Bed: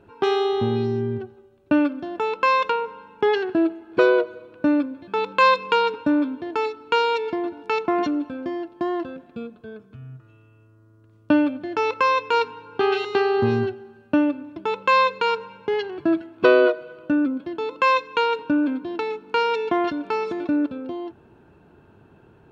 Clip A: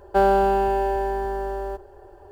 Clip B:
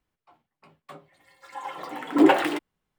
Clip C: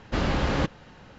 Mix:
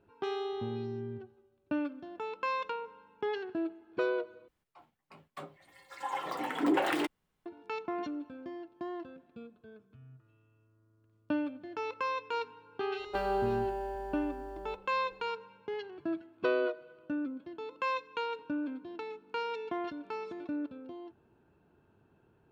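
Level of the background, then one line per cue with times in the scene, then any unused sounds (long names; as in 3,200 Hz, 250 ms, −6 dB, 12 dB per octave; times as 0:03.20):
bed −14.5 dB
0:04.48: overwrite with B + downward compressor 3 to 1, threshold −27 dBFS
0:12.99: mix in A −15 dB
not used: C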